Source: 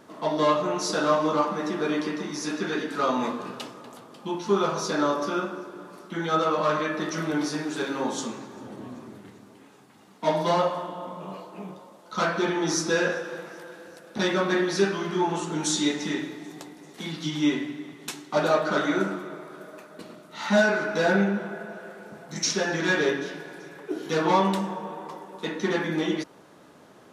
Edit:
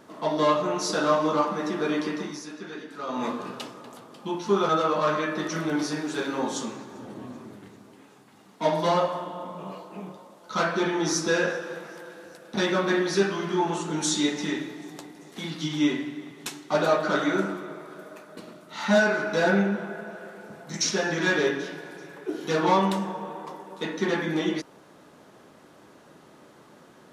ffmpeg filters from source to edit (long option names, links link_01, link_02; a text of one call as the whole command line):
ffmpeg -i in.wav -filter_complex "[0:a]asplit=4[link_01][link_02][link_03][link_04];[link_01]atrim=end=2.46,asetpts=PTS-STARTPTS,afade=type=out:start_time=2.23:duration=0.23:silence=0.316228[link_05];[link_02]atrim=start=2.46:end=3.06,asetpts=PTS-STARTPTS,volume=-10dB[link_06];[link_03]atrim=start=3.06:end=4.692,asetpts=PTS-STARTPTS,afade=type=in:duration=0.23:silence=0.316228[link_07];[link_04]atrim=start=6.308[link_08];[link_05][link_06][link_07]concat=n=3:v=0:a=1[link_09];[link_09][link_08]acrossfade=duration=0.004:curve1=hsin:curve2=hsin" out.wav